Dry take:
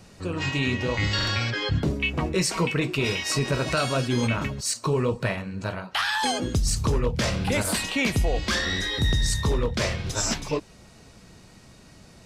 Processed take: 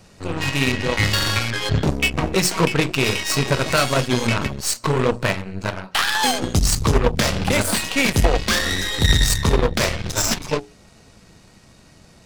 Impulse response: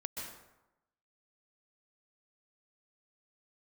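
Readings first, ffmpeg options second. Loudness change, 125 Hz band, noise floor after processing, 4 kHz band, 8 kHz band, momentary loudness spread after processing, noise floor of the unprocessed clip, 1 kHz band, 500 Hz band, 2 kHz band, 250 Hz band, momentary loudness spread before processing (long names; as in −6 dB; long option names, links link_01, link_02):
+5.5 dB, +4.5 dB, −50 dBFS, +6.0 dB, +6.5 dB, 5 LU, −51 dBFS, +6.5 dB, +5.5 dB, +5.5 dB, +4.5 dB, 4 LU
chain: -af "acontrast=58,bandreject=frequency=60:width_type=h:width=6,bandreject=frequency=120:width_type=h:width=6,bandreject=frequency=180:width_type=h:width=6,bandreject=frequency=240:width_type=h:width=6,bandreject=frequency=300:width_type=h:width=6,bandreject=frequency=360:width_type=h:width=6,bandreject=frequency=420:width_type=h:width=6,aeval=exprs='0.422*(cos(1*acos(clip(val(0)/0.422,-1,1)))-cos(1*PI/2))+0.0944*(cos(3*acos(clip(val(0)/0.422,-1,1)))-cos(3*PI/2))+0.0376*(cos(6*acos(clip(val(0)/0.422,-1,1)))-cos(6*PI/2))+0.0473*(cos(8*acos(clip(val(0)/0.422,-1,1)))-cos(8*PI/2))':channel_layout=same,volume=4.5dB"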